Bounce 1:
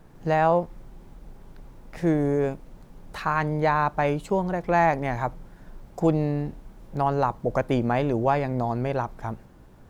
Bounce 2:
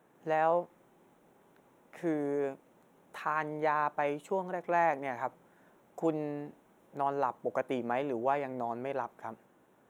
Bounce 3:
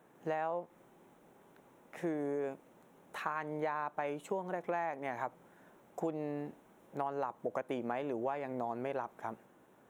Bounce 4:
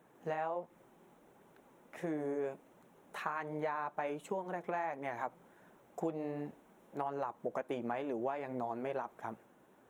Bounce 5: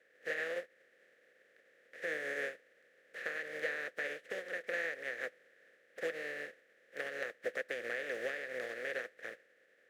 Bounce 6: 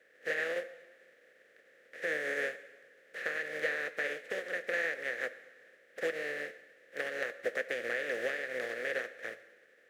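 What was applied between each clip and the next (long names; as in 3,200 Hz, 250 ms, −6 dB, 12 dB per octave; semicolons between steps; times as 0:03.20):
high-pass filter 300 Hz 12 dB per octave; parametric band 4,700 Hz −15 dB 0.39 octaves; level −7 dB
downward compressor 6 to 1, threshold −34 dBFS, peak gain reduction 11 dB; level +1.5 dB
flanger 1.4 Hz, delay 0.3 ms, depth 5.5 ms, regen −45%; level +3 dB
compressing power law on the bin magnitudes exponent 0.27; pair of resonant band-passes 950 Hz, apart 1.8 octaves; level +9.5 dB
dense smooth reverb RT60 1.3 s, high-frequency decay 0.95×, DRR 12.5 dB; level +4 dB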